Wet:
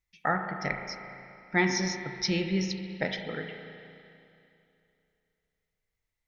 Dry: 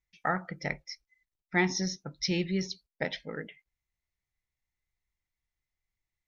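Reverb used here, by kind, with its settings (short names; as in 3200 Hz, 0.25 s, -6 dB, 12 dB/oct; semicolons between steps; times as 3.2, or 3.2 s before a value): spring tank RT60 2.7 s, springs 30/37 ms, chirp 35 ms, DRR 4.5 dB; gain +1.5 dB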